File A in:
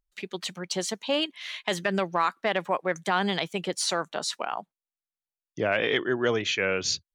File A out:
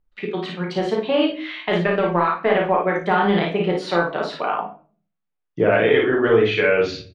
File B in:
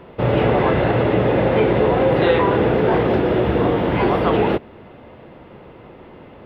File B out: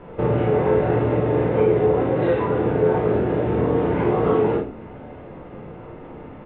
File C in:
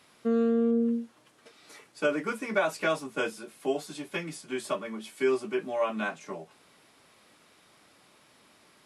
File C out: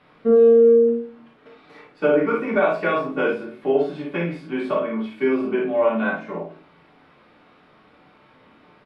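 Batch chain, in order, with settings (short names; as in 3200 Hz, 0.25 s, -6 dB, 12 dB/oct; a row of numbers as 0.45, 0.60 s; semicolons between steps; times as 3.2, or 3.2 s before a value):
air absorption 390 m; compressor 6:1, threshold -23 dBFS; dynamic EQ 410 Hz, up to +5 dB, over -41 dBFS, Q 3; on a send: early reflections 35 ms -6 dB, 54 ms -4.5 dB; on the sum: shoebox room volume 30 m³, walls mixed, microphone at 0.39 m; match loudness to -20 LUFS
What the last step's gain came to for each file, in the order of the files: +6.5, -0.5, +5.5 dB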